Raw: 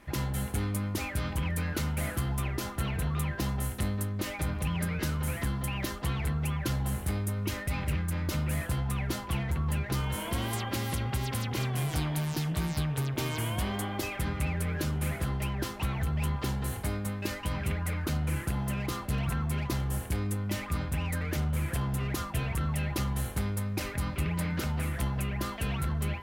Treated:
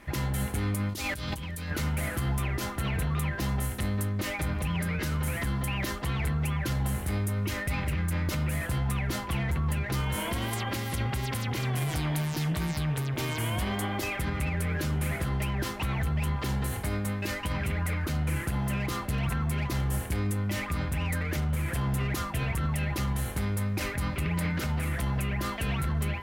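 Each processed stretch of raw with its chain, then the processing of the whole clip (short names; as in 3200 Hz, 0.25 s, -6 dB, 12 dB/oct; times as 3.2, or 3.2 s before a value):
0.89–1.71 resonant high shelf 2800 Hz +6.5 dB, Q 1.5 + negative-ratio compressor -38 dBFS
whole clip: bell 2000 Hz +3 dB 0.54 oct; limiter -24.5 dBFS; gain +3.5 dB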